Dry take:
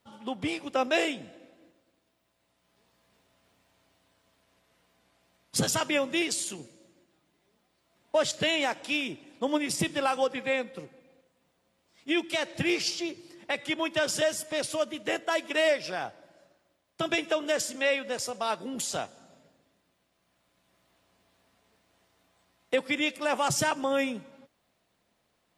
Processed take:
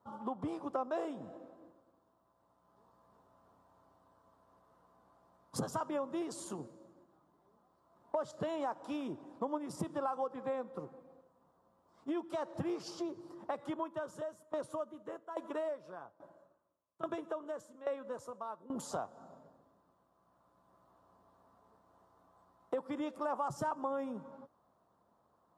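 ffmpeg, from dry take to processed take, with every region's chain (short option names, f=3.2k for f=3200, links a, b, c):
-filter_complex "[0:a]asettb=1/sr,asplit=3[a][b][c];[a]atrim=end=13.704[d];[b]atrim=start=13.7:end=18.76,asetpts=PTS-STARTPTS,afade=t=in:d=0.004:c=qsin,afade=t=out:st=5.056:d=0.004:c=qsin,equalizer=f=5k:w=5.2:g=-9,bandreject=f=760:w=5.8,aeval=exprs='val(0)*pow(10,-20*if(lt(mod(1.2*n/s,1),2*abs(1.2)/1000),1-mod(1.2*n/s,1)/(2*abs(1.2)/1000),(mod(1.2*n/s,1)-2*abs(1.2)/1000)/(1-2*abs(1.2)/1000))/20)':c=same[e];[c]atrim=start=18.756[f];[d][e]acrossfade=d=0.004:c1=hsin:c2=qsin[g];[g][f]acrossfade=d=0.004:c1=qsin:c2=hsin,highshelf=f=1.6k:t=q:w=3:g=-13,acompressor=threshold=-37dB:ratio=3,highpass=50"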